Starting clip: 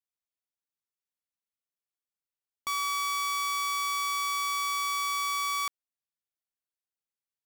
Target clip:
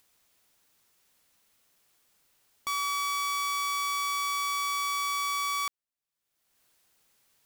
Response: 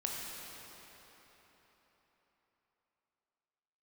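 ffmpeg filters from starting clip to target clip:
-af "acompressor=mode=upward:threshold=-48dB:ratio=2.5"

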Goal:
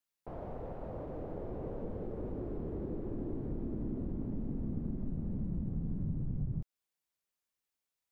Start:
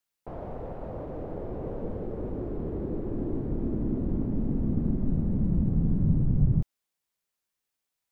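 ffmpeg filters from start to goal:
ffmpeg -i in.wav -af "acompressor=threshold=-29dB:ratio=3,volume=-5dB" out.wav

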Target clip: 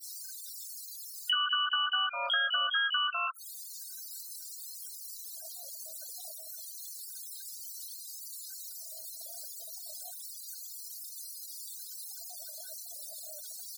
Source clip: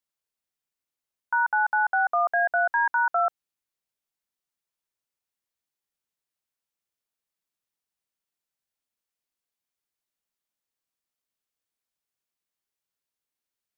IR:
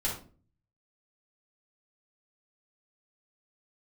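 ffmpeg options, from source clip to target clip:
-filter_complex "[0:a]aeval=exprs='val(0)+0.5*0.00944*sgn(val(0))':channel_layout=same,firequalizer=gain_entry='entry(200,0);entry(320,13);entry(510,-9);entry(920,-29);entry(1500,-1);entry(2300,-17);entry(4100,0)':delay=0.05:min_phase=1,asplit=2[link_01][link_02];[1:a]atrim=start_sample=2205,afade=type=out:start_time=0.34:duration=0.01,atrim=end_sample=15435[link_03];[link_02][link_03]afir=irnorm=-1:irlink=0,volume=-25dB[link_04];[link_01][link_04]amix=inputs=2:normalize=0,asplit=4[link_05][link_06][link_07][link_08];[link_06]asetrate=35002,aresample=44100,atempo=1.25992,volume=-5dB[link_09];[link_07]asetrate=37084,aresample=44100,atempo=1.18921,volume=-12dB[link_10];[link_08]asetrate=88200,aresample=44100,atempo=0.5,volume=-4dB[link_11];[link_05][link_09][link_10][link_11]amix=inputs=4:normalize=0,asplit=2[link_12][link_13];[link_13]adelay=22,volume=-3.5dB[link_14];[link_12][link_14]amix=inputs=2:normalize=0,acompressor=threshold=-36dB:ratio=6,adynamicequalizer=threshold=0.00158:dfrequency=480:dqfactor=0.97:tfrequency=480:tqfactor=0.97:attack=5:release=100:ratio=0.375:range=1.5:mode=cutabove:tftype=bell,afftfilt=real='re*gte(hypot(re,im),0.00631)':imag='im*gte(hypot(re,im),0.00631)':win_size=1024:overlap=0.75,afftfilt=real='re*gte(b*sr/1024,450*pow(1500/450,0.5+0.5*sin(2*PI*0.29*pts/sr)))':imag='im*gte(b*sr/1024,450*pow(1500/450,0.5+0.5*sin(2*PI*0.29*pts/sr)))':win_size=1024:overlap=0.75,volume=8.5dB"

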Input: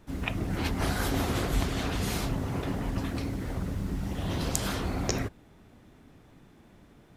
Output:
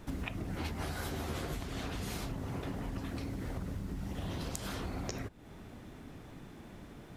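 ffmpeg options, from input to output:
ffmpeg -i in.wav -filter_complex "[0:a]acompressor=threshold=-41dB:ratio=10,asettb=1/sr,asplit=3[link_01][link_02][link_03];[link_01]atrim=end=0.554[link_04];[link_02]atrim=start=0.55:end=1.59,asetpts=PTS-STARTPTS,afade=type=in:duration=0.004:curve=qsin,afade=type=out:start_time=1.036:duration=0.004:curve=qsin,asplit=2[link_05][link_06];[link_06]adelay=13,volume=-6dB[link_07];[link_05][link_07]amix=inputs=2:normalize=0,atrim=end_sample=45864[link_08];[link_03]atrim=start=1.586[link_09];[link_04][link_08]acrossfade=duration=0.004:curve1=hsin:curve2=qsin[link_10];[link_10][link_09]acrossfade=duration=0.004:curve1=qsin:curve2=hsin,volume=5.5dB" out.wav

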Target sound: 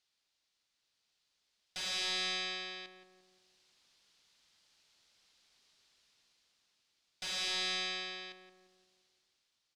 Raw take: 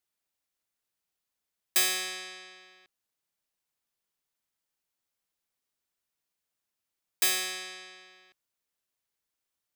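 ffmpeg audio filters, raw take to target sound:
ffmpeg -i in.wav -filter_complex "[0:a]highshelf=frequency=3000:gain=10.5,dynaudnorm=framelen=190:gausssize=11:maxgain=11.5dB,asoftclip=type=hard:threshold=-35dB,lowpass=frequency=4400:width_type=q:width=1.6,asplit=2[link_01][link_02];[link_02]adelay=173,lowpass=frequency=1100:poles=1,volume=-6dB,asplit=2[link_03][link_04];[link_04]adelay=173,lowpass=frequency=1100:poles=1,volume=0.53,asplit=2[link_05][link_06];[link_06]adelay=173,lowpass=frequency=1100:poles=1,volume=0.53,asplit=2[link_07][link_08];[link_08]adelay=173,lowpass=frequency=1100:poles=1,volume=0.53,asplit=2[link_09][link_10];[link_10]adelay=173,lowpass=frequency=1100:poles=1,volume=0.53,asplit=2[link_11][link_12];[link_12]adelay=173,lowpass=frequency=1100:poles=1,volume=0.53,asplit=2[link_13][link_14];[link_14]adelay=173,lowpass=frequency=1100:poles=1,volume=0.53[link_15];[link_01][link_03][link_05][link_07][link_09][link_11][link_13][link_15]amix=inputs=8:normalize=0" out.wav

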